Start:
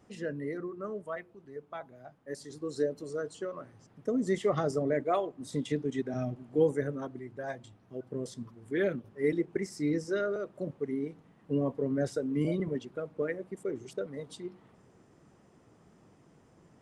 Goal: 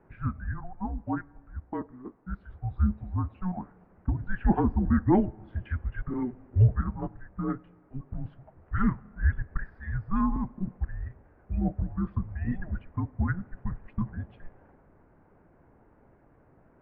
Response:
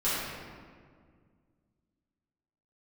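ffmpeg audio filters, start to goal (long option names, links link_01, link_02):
-filter_complex "[0:a]tiltshelf=frequency=1100:gain=4,asettb=1/sr,asplit=3[link_01][link_02][link_03];[link_01]atrim=end=11.804[link_04];[link_02]atrim=start=11.8:end=12.22,asetpts=PTS-STARTPTS,afade=type=in:duration=0.004:curve=qsin,afade=type=out:start_time=0.416:duration=0.004:curve=qsin,acompressor=threshold=-27dB:ratio=4[link_05];[link_03]atrim=start=12.216[link_06];[link_04][link_05]acrossfade=duration=0.004:curve1=hsin:curve2=qsin[link_07];[link_07][link_06]acrossfade=duration=0.004:curve1=qsin:curve2=hsin,asplit=2[link_08][link_09];[1:a]atrim=start_sample=2205[link_10];[link_09][link_10]afir=irnorm=-1:irlink=0,volume=-34dB[link_11];[link_08][link_11]amix=inputs=2:normalize=0,highpass=frequency=460:width_type=q:width=0.5412,highpass=frequency=460:width_type=q:width=1.307,lowpass=frequency=2400:width_type=q:width=0.5176,lowpass=frequency=2400:width_type=q:width=0.7071,lowpass=frequency=2400:width_type=q:width=1.932,afreqshift=-370,volume=6.5dB"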